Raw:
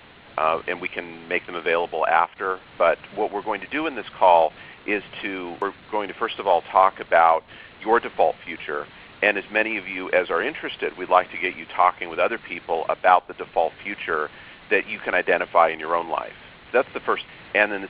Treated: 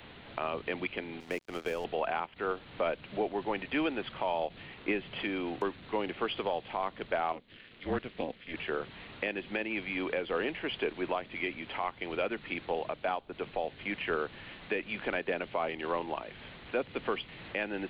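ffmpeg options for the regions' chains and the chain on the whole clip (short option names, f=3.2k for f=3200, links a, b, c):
-filter_complex "[0:a]asettb=1/sr,asplit=3[a][b][c];[a]atrim=end=1.204[d];[b]atrim=start=1.2:end=1.85,asetpts=PTS-STARTPTS,afade=t=in:d=0.004:c=qsin,afade=t=out:st=0.646:d=0.004:c=qsin,asubboost=boost=11:cutoff=130,acrossover=split=700|3300[e][f][g];[e]acompressor=threshold=-27dB:ratio=4[h];[f]acompressor=threshold=-33dB:ratio=4[i];[g]acompressor=threshold=-51dB:ratio=4[j];[h][i][j]amix=inputs=3:normalize=0,aeval=exprs='sgn(val(0))*max(abs(val(0))-0.00794,0)':c=same[k];[c]atrim=start=1.846[l];[d][k]acrossfade=d=0.004:c1=hsin:c2=qsin[m];[m][l]acrossfade=d=0.004:c1=qsin:c2=hsin,asettb=1/sr,asplit=3[n][o][p];[n]atrim=end=7.324[q];[o]atrim=start=7.32:end=8.54,asetpts=PTS-STARTPTS,afade=t=in:d=0.004:c=qsin,afade=t=out:st=1.216:d=0.004:c=qsin,highpass=160,equalizer=f=800:t=o:w=1:g=-12,tremolo=f=250:d=0.919[r];[p]atrim=start=8.536[s];[q][r]acrossfade=d=0.004:c1=hsin:c2=qsin[t];[t][s]acrossfade=d=0.004:c1=qsin:c2=hsin,equalizer=f=1.3k:t=o:w=2.6:g=-5,acrossover=split=360|3000[u][v][w];[v]acompressor=threshold=-41dB:ratio=1.5[x];[u][x][w]amix=inputs=3:normalize=0,alimiter=limit=-20.5dB:level=0:latency=1:release=234"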